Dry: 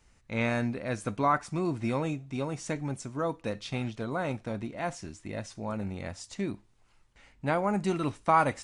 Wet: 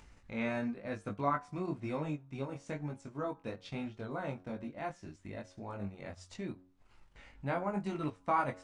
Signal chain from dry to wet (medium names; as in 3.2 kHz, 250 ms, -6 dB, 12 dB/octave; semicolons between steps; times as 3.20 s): low-pass 3.5 kHz 6 dB/octave; de-hum 91.73 Hz, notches 19; in parallel at -0.5 dB: upward compressor, threshold -32 dBFS; on the sum: chorus 1 Hz, delay 19.5 ms, depth 2.6 ms; transient shaper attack 0 dB, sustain -6 dB; trim -9 dB